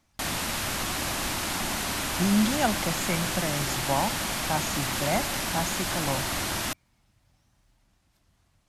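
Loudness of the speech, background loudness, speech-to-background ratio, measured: -30.0 LUFS, -28.5 LUFS, -1.5 dB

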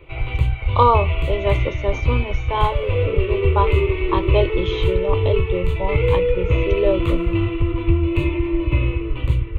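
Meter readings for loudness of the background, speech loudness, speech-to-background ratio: -21.0 LUFS, -24.0 LUFS, -3.0 dB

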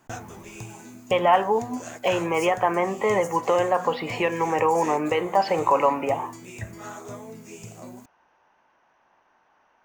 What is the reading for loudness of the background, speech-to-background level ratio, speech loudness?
-40.0 LUFS, 17.0 dB, -23.0 LUFS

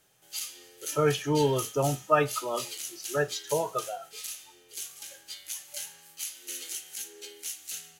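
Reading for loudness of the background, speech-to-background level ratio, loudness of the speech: -38.0 LUFS, 9.5 dB, -28.5 LUFS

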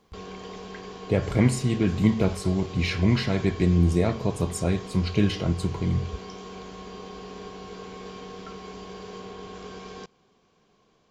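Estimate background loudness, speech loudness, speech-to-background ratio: -40.0 LUFS, -24.5 LUFS, 15.5 dB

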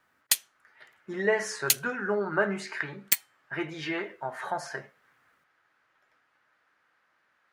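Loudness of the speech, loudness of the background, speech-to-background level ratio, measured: -31.5 LUFS, -27.0 LUFS, -4.5 dB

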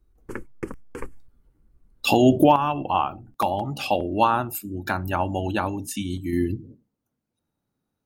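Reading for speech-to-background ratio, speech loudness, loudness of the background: 15.5 dB, -23.5 LUFS, -39.0 LUFS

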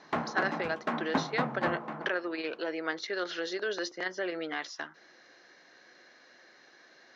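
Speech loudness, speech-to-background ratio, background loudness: -34.5 LUFS, 0.5 dB, -35.0 LUFS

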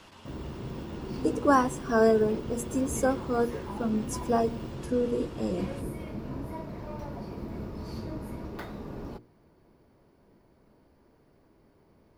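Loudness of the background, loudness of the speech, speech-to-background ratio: -38.5 LUFS, -28.0 LUFS, 10.5 dB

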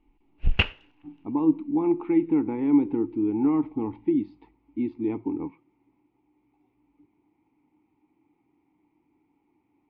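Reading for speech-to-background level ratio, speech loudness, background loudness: 2.0 dB, -25.5 LUFS, -27.5 LUFS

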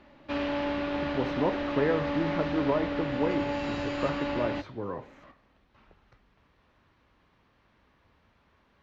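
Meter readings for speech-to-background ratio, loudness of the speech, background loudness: -0.5 dB, -32.5 LUFS, -32.0 LUFS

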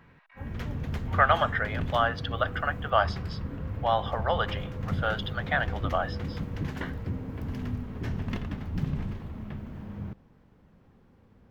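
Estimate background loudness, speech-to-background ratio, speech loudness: -35.0 LUFS, 6.5 dB, -28.5 LUFS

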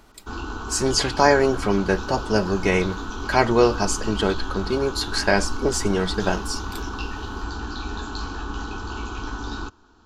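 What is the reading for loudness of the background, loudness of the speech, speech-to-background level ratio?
-32.0 LUFS, -22.0 LUFS, 10.0 dB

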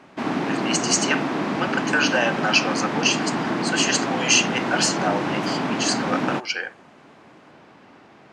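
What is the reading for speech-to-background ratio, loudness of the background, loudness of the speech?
2.0 dB, -25.0 LUFS, -23.0 LUFS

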